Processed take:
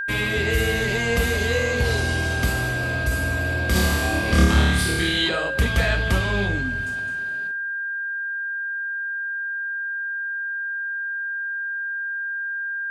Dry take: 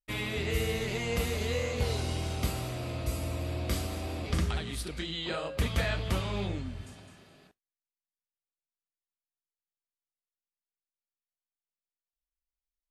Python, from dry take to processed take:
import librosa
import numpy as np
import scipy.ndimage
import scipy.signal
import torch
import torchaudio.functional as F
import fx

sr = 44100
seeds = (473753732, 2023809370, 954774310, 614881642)

p1 = 10.0 ** (-27.0 / 20.0) * np.tanh(x / 10.0 ** (-27.0 / 20.0))
p2 = x + (p1 * 10.0 ** (-4.5 / 20.0))
p3 = fx.room_flutter(p2, sr, wall_m=4.7, rt60_s=1.1, at=(3.74, 5.28), fade=0.02)
p4 = fx.rev_double_slope(p3, sr, seeds[0], early_s=0.5, late_s=2.7, knee_db=-21, drr_db=11.5)
p5 = p4 + 10.0 ** (-30.0 / 20.0) * np.sin(2.0 * np.pi * 1600.0 * np.arange(len(p4)) / sr)
p6 = fx.end_taper(p5, sr, db_per_s=110.0)
y = p6 * 10.0 ** (5.0 / 20.0)